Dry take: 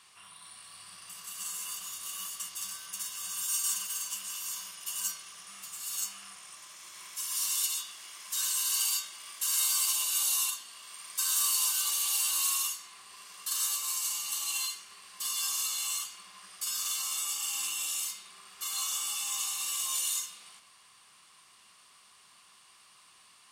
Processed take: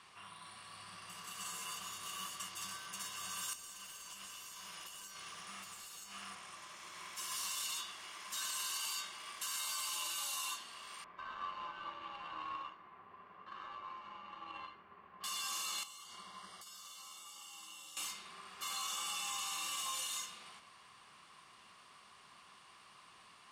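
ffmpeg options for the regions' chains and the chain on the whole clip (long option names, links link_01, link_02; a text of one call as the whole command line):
ffmpeg -i in.wav -filter_complex "[0:a]asettb=1/sr,asplit=3[link_01][link_02][link_03];[link_01]atrim=end=3.534[link_04];[link_02]atrim=start=3.53:end=6.35,asetpts=PTS-STARTPTS,afade=type=in:duration=0.004:curve=qsin,afade=type=out:start_time=2.816:duration=0.004:curve=qsin,highshelf=frequency=2300:gain=2.5,acrusher=bits=4:mode=log:mix=0:aa=0.000001,acompressor=threshold=-40dB:ratio=8:attack=3.2:release=140:knee=1:detection=peak[link_05];[link_03]atrim=start=6.346[link_06];[link_04][link_05]acrossfade=duration=0.004:curve1=hsin:curve2=qsin[link_07];[link_07][link_06]acrossfade=duration=0.004:curve1=qsin:curve2=hsin,asettb=1/sr,asplit=3[link_08][link_09][link_10];[link_08]atrim=end=11.044[link_11];[link_09]atrim=start=11.04:end=15.24,asetpts=PTS-STARTPTS,afade=type=in:duration=0.004:curve=qsin,afade=type=out:start_time=4.196:duration=0.004:curve=qsin,lowpass=2800,adynamicsmooth=sensitivity=2.5:basefreq=1300[link_12];[link_10]atrim=start=15.236[link_13];[link_11][link_12]acrossfade=duration=0.004:curve1=hsin:curve2=qsin[link_14];[link_14][link_13]acrossfade=duration=0.004:curve1=qsin:curve2=hsin,asettb=1/sr,asplit=3[link_15][link_16][link_17];[link_15]atrim=end=15.834[link_18];[link_16]atrim=start=15.83:end=17.97,asetpts=PTS-STARTPTS,afade=type=in:duration=0.004:curve=qsin,afade=type=out:start_time=2.136:duration=0.004:curve=qsin,equalizer=frequency=1700:width_type=o:width=0.46:gain=-6,acompressor=threshold=-43dB:ratio=10:attack=3.2:release=140:knee=1:detection=peak,asuperstop=centerf=2500:order=12:qfactor=5.7[link_19];[link_17]atrim=start=17.966[link_20];[link_18][link_19]acrossfade=duration=0.004:curve1=hsin:curve2=qsin[link_21];[link_21][link_20]acrossfade=duration=0.004:curve1=qsin:curve2=hsin,lowpass=frequency=1600:poles=1,alimiter=level_in=12dB:limit=-24dB:level=0:latency=1:release=11,volume=-12dB,volume=5dB" out.wav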